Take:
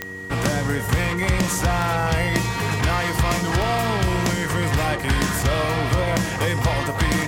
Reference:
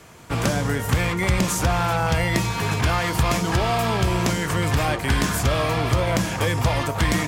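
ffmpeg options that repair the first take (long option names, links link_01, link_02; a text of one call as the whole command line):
ffmpeg -i in.wav -af "adeclick=threshold=4,bandreject=frequency=94.5:width_type=h:width=4,bandreject=frequency=189:width_type=h:width=4,bandreject=frequency=283.5:width_type=h:width=4,bandreject=frequency=378:width_type=h:width=4,bandreject=frequency=472.5:width_type=h:width=4,bandreject=frequency=1900:width=30" out.wav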